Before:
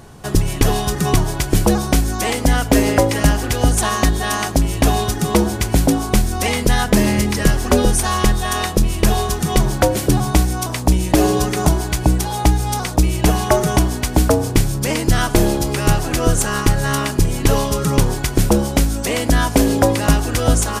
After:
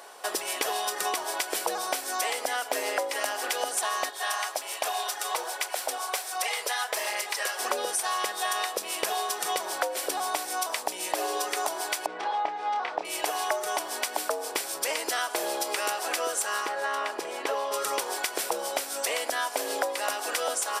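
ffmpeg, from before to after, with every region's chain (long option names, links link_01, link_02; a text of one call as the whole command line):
ffmpeg -i in.wav -filter_complex "[0:a]asettb=1/sr,asplit=3[link_01][link_02][link_03];[link_01]atrim=end=4.104[link_04];[link_02]atrim=start=4.1:end=7.59,asetpts=PTS-STARTPTS,afade=type=in:duration=0.004:curve=qsin,afade=type=out:start_time=3.486:duration=0.004:curve=qsin,highpass=570,flanger=delay=0:depth=9:regen=-31:speed=1.3:shape=sinusoidal[link_05];[link_03]atrim=start=7.586[link_06];[link_04][link_05]acrossfade=duration=0.004:curve1=hsin:curve2=qsin[link_07];[link_07][link_06]acrossfade=duration=0.004:curve1=qsin:curve2=hsin,asettb=1/sr,asplit=3[link_08][link_09][link_10];[link_08]atrim=end=12.064[link_11];[link_09]atrim=start=12.06:end=13.05,asetpts=PTS-STARTPTS,afade=type=in:duration=0.004:curve=qsin,afade=type=out:start_time=0.986:duration=0.004:curve=qsin,lowpass=2800,aemphasis=mode=reproduction:type=50fm,asplit=2[link_12][link_13];[link_13]adelay=28,volume=-6dB[link_14];[link_12][link_14]amix=inputs=2:normalize=0,atrim=end_sample=43659[link_15];[link_10]atrim=start=13.046[link_16];[link_11][link_15]acrossfade=duration=0.004:curve1=hsin:curve2=qsin[link_17];[link_17][link_16]acrossfade=duration=0.004:curve1=qsin:curve2=hsin,asettb=1/sr,asplit=3[link_18][link_19][link_20];[link_18]atrim=end=16.664[link_21];[link_19]atrim=start=16.66:end=17.74,asetpts=PTS-STARTPTS,afade=type=in:duration=0.004:curve=qsin,afade=type=out:start_time=1.076:duration=0.004:curve=qsin,lowpass=frequency=1600:poles=1,lowshelf=frequency=90:gain=-9.5[link_22];[link_20]atrim=start=17.736[link_23];[link_21][link_22]acrossfade=duration=0.004:curve1=hsin:curve2=qsin[link_24];[link_24][link_23]acrossfade=duration=0.004:curve1=qsin:curve2=hsin,highpass=frequency=520:width=0.5412,highpass=frequency=520:width=1.3066,bandreject=frequency=6600:width=14,acompressor=threshold=-26dB:ratio=6" out.wav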